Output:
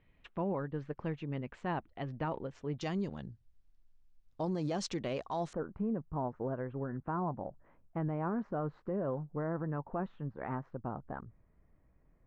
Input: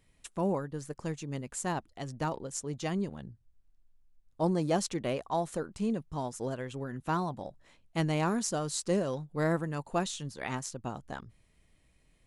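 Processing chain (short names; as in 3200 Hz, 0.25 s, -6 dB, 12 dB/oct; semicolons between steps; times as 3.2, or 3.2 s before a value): LPF 2900 Hz 24 dB/oct, from 2.81 s 6000 Hz, from 5.53 s 1500 Hz; limiter -27 dBFS, peak gain reduction 9.5 dB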